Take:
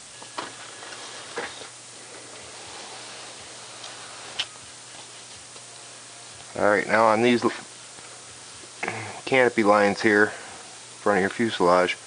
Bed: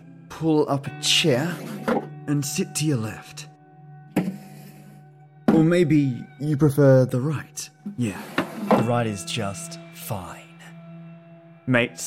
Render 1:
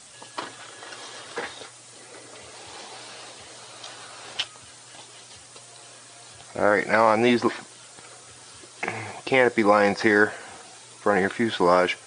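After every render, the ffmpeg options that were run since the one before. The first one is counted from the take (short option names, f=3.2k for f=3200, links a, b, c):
-af "afftdn=nr=6:nf=-44"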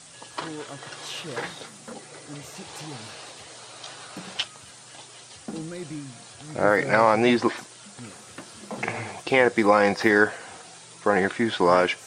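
-filter_complex "[1:a]volume=-18dB[a];[0:a][a]amix=inputs=2:normalize=0"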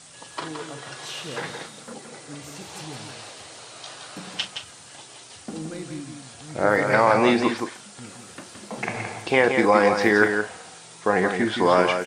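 -filter_complex "[0:a]asplit=2[a][b];[b]adelay=38,volume=-11.5dB[c];[a][c]amix=inputs=2:normalize=0,asplit=2[d][e];[e]aecho=0:1:169:0.473[f];[d][f]amix=inputs=2:normalize=0"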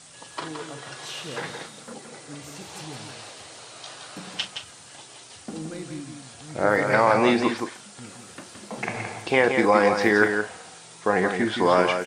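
-af "volume=-1dB"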